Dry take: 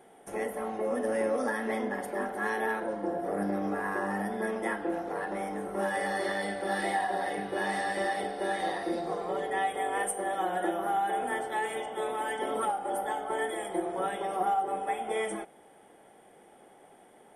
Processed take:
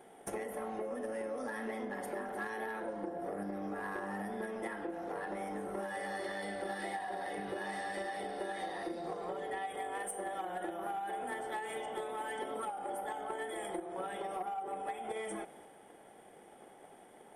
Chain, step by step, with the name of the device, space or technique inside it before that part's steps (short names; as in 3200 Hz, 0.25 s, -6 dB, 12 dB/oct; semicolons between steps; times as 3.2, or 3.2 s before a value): drum-bus smash (transient shaper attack +8 dB, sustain +4 dB; compressor 6:1, threshold -34 dBFS, peak gain reduction 14 dB; soft clip -27.5 dBFS, distortion -22 dB); gain -1.5 dB